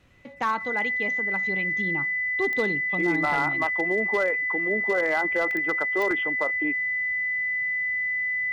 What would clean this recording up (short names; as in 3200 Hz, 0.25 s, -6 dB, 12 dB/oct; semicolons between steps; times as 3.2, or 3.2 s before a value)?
clip repair -17 dBFS; de-click; notch 2000 Hz, Q 30; interpolate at 5.51/6.11, 1.1 ms